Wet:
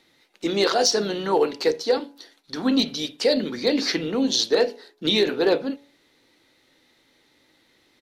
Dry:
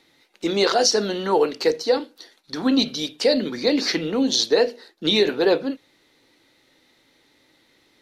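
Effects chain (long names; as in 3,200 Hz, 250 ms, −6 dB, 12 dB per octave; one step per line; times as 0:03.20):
hum removal 141.4 Hz, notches 7
pitch-shifted copies added −3 semitones −15 dB
gain into a clipping stage and back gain 9.5 dB
level −1.5 dB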